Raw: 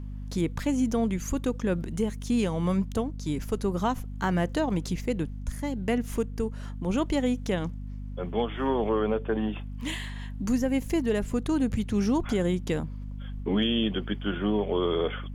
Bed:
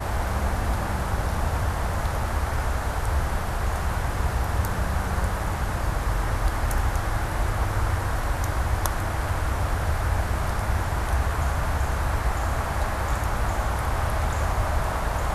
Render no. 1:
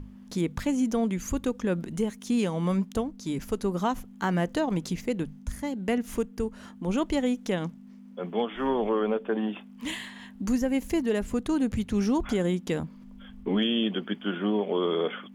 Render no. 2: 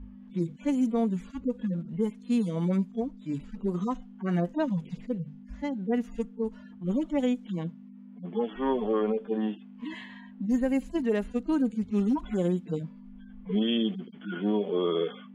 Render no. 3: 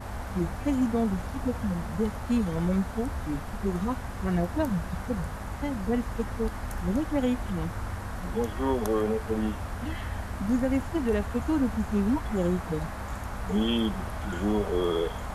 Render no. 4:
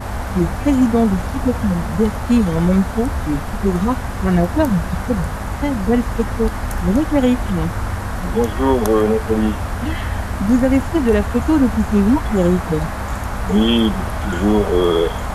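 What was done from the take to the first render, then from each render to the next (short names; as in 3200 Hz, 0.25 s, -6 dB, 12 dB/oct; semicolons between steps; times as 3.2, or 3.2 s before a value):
notches 50/100/150 Hz
median-filter separation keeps harmonic; low-pass opened by the level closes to 2200 Hz, open at -22 dBFS
add bed -10 dB
gain +11.5 dB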